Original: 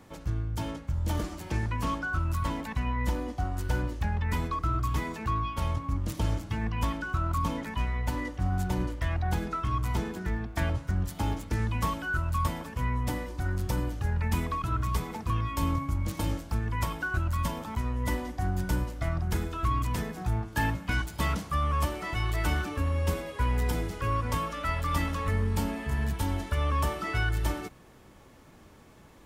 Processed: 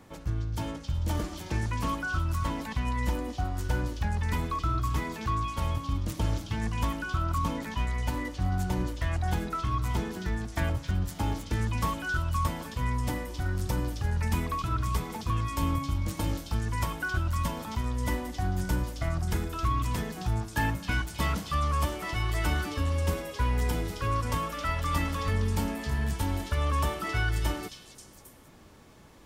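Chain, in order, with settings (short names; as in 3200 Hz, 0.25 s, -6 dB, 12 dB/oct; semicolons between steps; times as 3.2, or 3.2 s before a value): delay with a stepping band-pass 0.268 s, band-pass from 4300 Hz, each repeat 0.7 oct, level -1 dB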